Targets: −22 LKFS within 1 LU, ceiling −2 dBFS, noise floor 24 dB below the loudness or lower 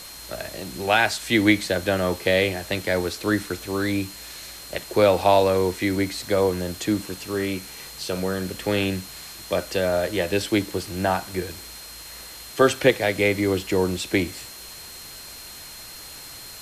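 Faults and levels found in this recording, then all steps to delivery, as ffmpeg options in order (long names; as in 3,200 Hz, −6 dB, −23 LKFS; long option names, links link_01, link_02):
interfering tone 4,200 Hz; level of the tone −43 dBFS; background noise floor −40 dBFS; target noise floor −48 dBFS; integrated loudness −23.5 LKFS; sample peak −4.5 dBFS; target loudness −22.0 LKFS
→ -af "bandreject=frequency=4200:width=30"
-af "afftdn=noise_reduction=8:noise_floor=-40"
-af "volume=1.5dB"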